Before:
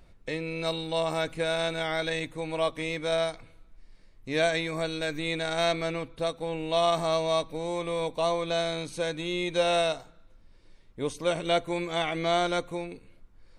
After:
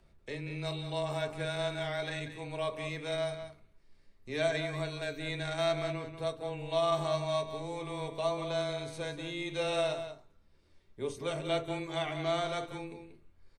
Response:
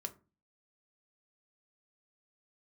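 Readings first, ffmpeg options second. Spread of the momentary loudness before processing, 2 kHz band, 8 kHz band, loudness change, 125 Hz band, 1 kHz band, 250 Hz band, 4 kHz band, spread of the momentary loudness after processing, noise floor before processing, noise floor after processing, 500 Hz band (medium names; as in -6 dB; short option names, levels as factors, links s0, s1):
8 LU, -6.5 dB, -7.0 dB, -6.0 dB, -1.0 dB, -6.5 dB, -6.5 dB, -7.0 dB, 9 LU, -56 dBFS, -64 dBFS, -5.5 dB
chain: -filter_complex "[0:a]afreqshift=-13,asplit=2[s0][s1];[s1]adelay=186.6,volume=0.355,highshelf=f=4000:g=-4.2[s2];[s0][s2]amix=inputs=2:normalize=0[s3];[1:a]atrim=start_sample=2205[s4];[s3][s4]afir=irnorm=-1:irlink=0,volume=0.596"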